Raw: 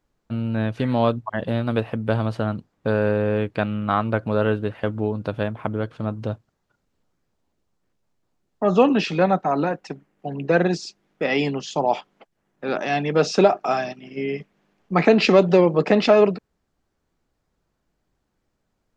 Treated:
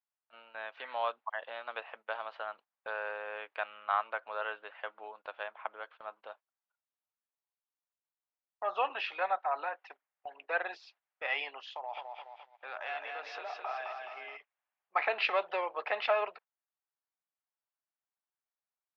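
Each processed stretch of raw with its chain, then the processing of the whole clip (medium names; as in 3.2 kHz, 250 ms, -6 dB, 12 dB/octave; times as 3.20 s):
11.75–14.37 s: compression, threshold -24 dBFS + bit-crushed delay 212 ms, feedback 55%, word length 9-bit, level -4 dB
whole clip: high-pass 740 Hz 24 dB/octave; gate -46 dBFS, range -13 dB; low-pass 3.3 kHz 24 dB/octave; trim -7 dB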